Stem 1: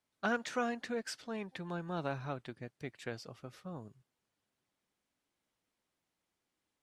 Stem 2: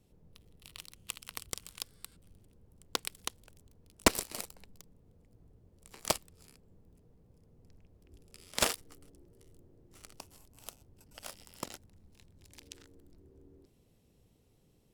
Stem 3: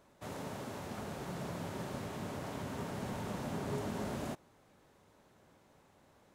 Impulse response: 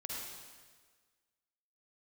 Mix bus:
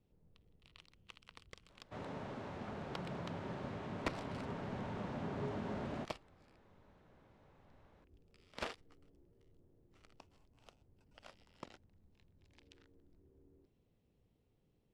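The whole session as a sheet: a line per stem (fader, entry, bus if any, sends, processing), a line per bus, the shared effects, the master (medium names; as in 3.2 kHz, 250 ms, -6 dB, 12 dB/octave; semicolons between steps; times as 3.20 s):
mute
-8.0 dB, 0.00 s, no send, self-modulated delay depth 0.096 ms
-2.5 dB, 1.70 s, no send, none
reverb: none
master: low-pass 3.3 kHz 12 dB/octave; saturation -26 dBFS, distortion -17 dB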